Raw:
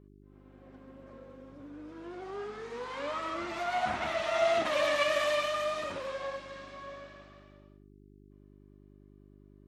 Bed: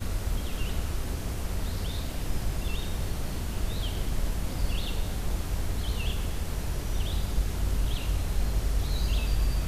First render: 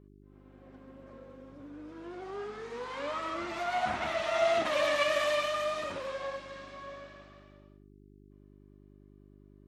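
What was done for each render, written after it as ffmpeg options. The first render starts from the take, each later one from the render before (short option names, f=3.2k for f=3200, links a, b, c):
-af anull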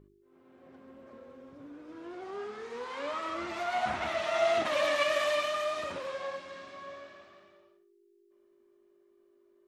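-af "bandreject=f=50:t=h:w=4,bandreject=f=100:t=h:w=4,bandreject=f=150:t=h:w=4,bandreject=f=200:t=h:w=4,bandreject=f=250:t=h:w=4,bandreject=f=300:t=h:w=4"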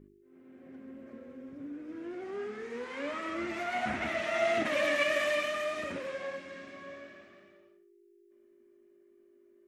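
-af "equalizer=f=250:t=o:w=1:g=8,equalizer=f=1k:t=o:w=1:g=-8,equalizer=f=2k:t=o:w=1:g=6,equalizer=f=4k:t=o:w=1:g=-6"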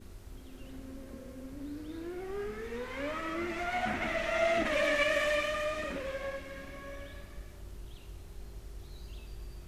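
-filter_complex "[1:a]volume=-19dB[a];[0:a][a]amix=inputs=2:normalize=0"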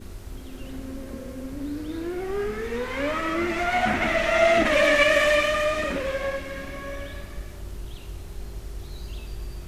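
-af "volume=10dB"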